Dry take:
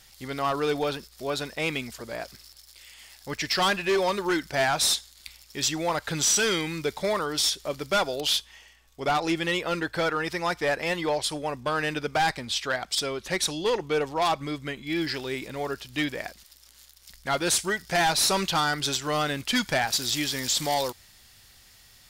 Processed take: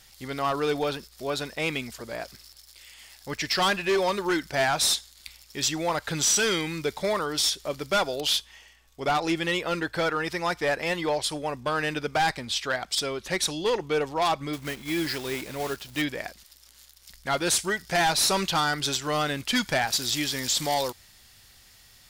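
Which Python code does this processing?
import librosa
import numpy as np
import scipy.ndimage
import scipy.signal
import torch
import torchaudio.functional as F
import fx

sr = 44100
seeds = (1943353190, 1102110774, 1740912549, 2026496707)

y = fx.block_float(x, sr, bits=3, at=(14.53, 16.02))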